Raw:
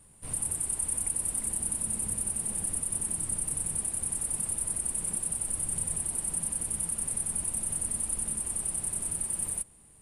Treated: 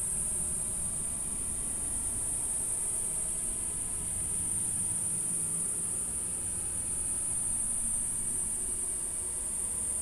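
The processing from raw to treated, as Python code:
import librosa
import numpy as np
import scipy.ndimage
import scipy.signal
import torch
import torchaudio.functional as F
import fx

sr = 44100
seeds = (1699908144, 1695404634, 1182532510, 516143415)

y = fx.rev_schroeder(x, sr, rt60_s=3.2, comb_ms=27, drr_db=2.5)
y = fx.paulstretch(y, sr, seeds[0], factor=29.0, window_s=0.1, from_s=8.96)
y = y * librosa.db_to_amplitude(-2.0)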